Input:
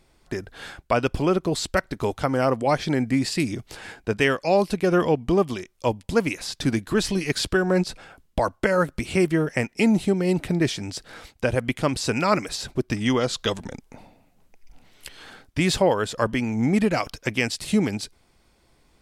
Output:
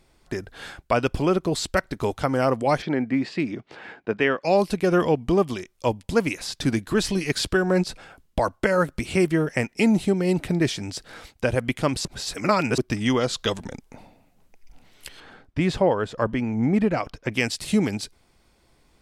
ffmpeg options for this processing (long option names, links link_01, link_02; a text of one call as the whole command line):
ffmpeg -i in.wav -filter_complex "[0:a]asplit=3[link_01][link_02][link_03];[link_01]afade=type=out:start_time=2.81:duration=0.02[link_04];[link_02]highpass=180,lowpass=2600,afade=type=in:start_time=2.81:duration=0.02,afade=type=out:start_time=4.43:duration=0.02[link_05];[link_03]afade=type=in:start_time=4.43:duration=0.02[link_06];[link_04][link_05][link_06]amix=inputs=3:normalize=0,asettb=1/sr,asplit=3[link_07][link_08][link_09];[link_07]atrim=end=15.204[link_10];[link_08]atrim=start=15.2:end=17.32,asetpts=PTS-STARTPTS,afade=type=in:duration=0.004:curve=qsin,afade=type=out:start_time=2.116:duration=0.004:curve=qsin,lowpass=frequency=1600:poles=1[link_11];[link_09]atrim=start=17.316[link_12];[link_10][link_11]acrossfade=duration=0.004:curve1=hsin:curve2=qsin[link_13];[link_13][link_12]acrossfade=duration=0.004:curve1=qsin:curve2=hsin,asplit=3[link_14][link_15][link_16];[link_14]atrim=end=12.052[link_17];[link_15]atrim=start=12.048:end=12.782,asetpts=PTS-STARTPTS,areverse[link_18];[link_16]atrim=start=12.778[link_19];[link_17][link_18]acrossfade=duration=0.004:curve1=hsin:curve2=hsin[link_20];[link_20][link_19]acrossfade=duration=0.004:curve1=hsin:curve2=hsin" out.wav